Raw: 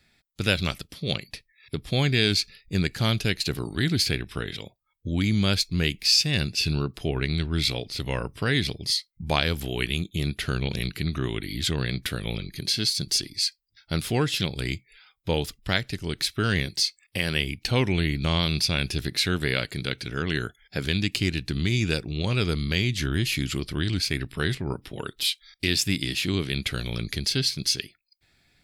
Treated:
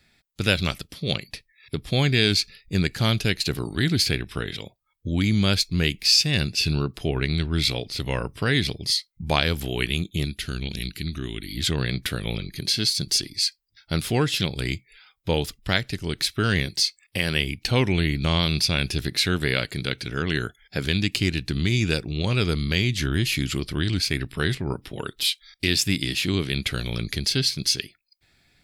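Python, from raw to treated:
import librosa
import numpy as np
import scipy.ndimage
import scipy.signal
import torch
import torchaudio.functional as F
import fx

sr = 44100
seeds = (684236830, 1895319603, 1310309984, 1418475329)

y = fx.graphic_eq(x, sr, hz=(125, 500, 1000, 2000), db=(-7, -9, -11, -3), at=(10.25, 11.57))
y = y * 10.0 ** (2.0 / 20.0)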